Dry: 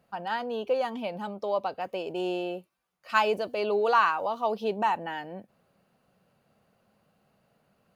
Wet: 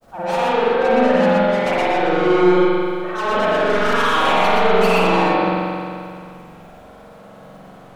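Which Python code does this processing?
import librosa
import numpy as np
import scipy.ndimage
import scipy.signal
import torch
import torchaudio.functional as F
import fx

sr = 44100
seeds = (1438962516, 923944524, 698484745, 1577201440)

p1 = scipy.signal.sosfilt(scipy.signal.butter(4, 1500.0, 'lowpass', fs=sr, output='sos'), x)
p2 = fx.low_shelf(p1, sr, hz=130.0, db=-10.0)
p3 = fx.level_steps(p2, sr, step_db=21)
p4 = p2 + F.gain(torch.from_numpy(p3), 3.0).numpy()
p5 = fx.auto_swell(p4, sr, attack_ms=215.0)
p6 = fx.fold_sine(p5, sr, drive_db=13, ceiling_db=-13.5)
p7 = fx.dmg_noise_colour(p6, sr, seeds[0], colour='pink', level_db=-58.0)
p8 = 10.0 ** (-24.0 / 20.0) * np.tanh(p7 / 10.0 ** (-24.0 / 20.0))
p9 = fx.granulator(p8, sr, seeds[1], grain_ms=100.0, per_s=20.0, spray_ms=17.0, spread_st=0)
p10 = fx.echo_multitap(p9, sr, ms=(59, 115, 126), db=(-8.5, -5.5, -5.0))
y = fx.rev_spring(p10, sr, rt60_s=2.3, pass_ms=(44,), chirp_ms=45, drr_db=-7.5)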